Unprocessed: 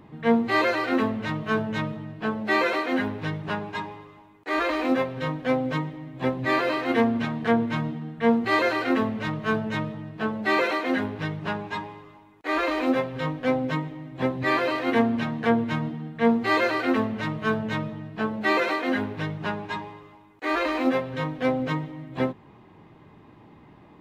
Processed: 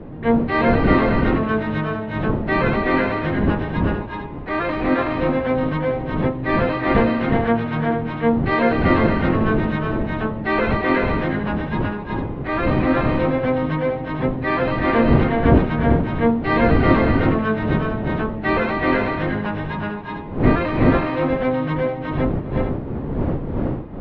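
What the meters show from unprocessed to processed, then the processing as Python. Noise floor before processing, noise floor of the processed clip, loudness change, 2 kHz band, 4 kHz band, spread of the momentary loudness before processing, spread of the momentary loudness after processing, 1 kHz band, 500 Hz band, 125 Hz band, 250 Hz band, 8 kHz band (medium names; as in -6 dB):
-52 dBFS, -29 dBFS, +6.0 dB, +3.5 dB, -0.5 dB, 10 LU, 8 LU, +5.0 dB, +6.0 dB, +11.5 dB, +6.5 dB, no reading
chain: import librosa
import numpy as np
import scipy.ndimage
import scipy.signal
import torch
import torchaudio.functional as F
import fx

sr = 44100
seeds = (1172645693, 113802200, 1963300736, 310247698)

y = fx.dmg_wind(x, sr, seeds[0], corner_hz=290.0, level_db=-29.0)
y = fx.air_absorb(y, sr, metres=290.0)
y = fx.echo_multitap(y, sr, ms=(258, 345, 374, 446), db=(-18.0, -9.0, -3.0, -8.5))
y = y * librosa.db_to_amplitude(3.5)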